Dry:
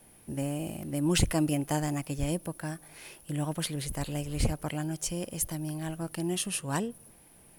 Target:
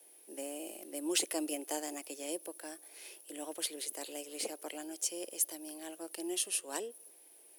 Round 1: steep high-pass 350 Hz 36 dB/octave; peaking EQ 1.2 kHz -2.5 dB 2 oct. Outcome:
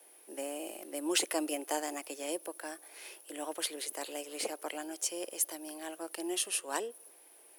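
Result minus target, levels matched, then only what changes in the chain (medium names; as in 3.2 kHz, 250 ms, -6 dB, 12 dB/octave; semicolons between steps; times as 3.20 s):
1 kHz band +5.0 dB
change: peaking EQ 1.2 kHz -11 dB 2 oct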